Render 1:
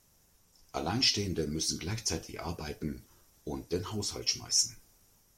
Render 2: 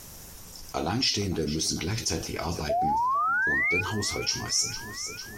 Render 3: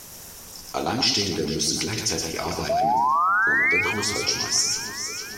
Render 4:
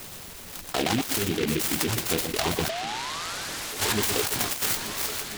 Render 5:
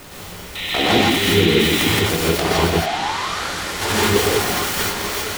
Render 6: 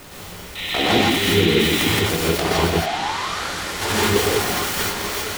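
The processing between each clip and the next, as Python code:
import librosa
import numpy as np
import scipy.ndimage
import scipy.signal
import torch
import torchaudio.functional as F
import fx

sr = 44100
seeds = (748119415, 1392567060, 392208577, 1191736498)

y1 = fx.spec_paint(x, sr, seeds[0], shape='rise', start_s=2.69, length_s=1.12, low_hz=640.0, high_hz=2500.0, level_db=-27.0)
y1 = fx.echo_feedback(y1, sr, ms=453, feedback_pct=50, wet_db=-19)
y1 = fx.env_flatten(y1, sr, amount_pct=50)
y2 = fx.low_shelf(y1, sr, hz=150.0, db=-10.5)
y2 = fx.echo_feedback(y2, sr, ms=120, feedback_pct=30, wet_db=-5)
y2 = y2 * 10.0 ** (4.0 / 20.0)
y3 = fx.dereverb_blind(y2, sr, rt60_s=0.84)
y3 = fx.over_compress(y3, sr, threshold_db=-26.0, ratio=-0.5)
y3 = fx.noise_mod_delay(y3, sr, seeds[1], noise_hz=2500.0, depth_ms=0.16)
y4 = fx.high_shelf(y3, sr, hz=4000.0, db=-9.5)
y4 = fx.spec_paint(y4, sr, seeds[2], shape='noise', start_s=0.55, length_s=1.38, low_hz=1800.0, high_hz=4100.0, level_db=-34.0)
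y4 = fx.rev_gated(y4, sr, seeds[3], gate_ms=190, shape='rising', drr_db=-5.5)
y4 = y4 * 10.0 ** (4.5 / 20.0)
y5 = fx.attack_slew(y4, sr, db_per_s=150.0)
y5 = y5 * 10.0 ** (-1.5 / 20.0)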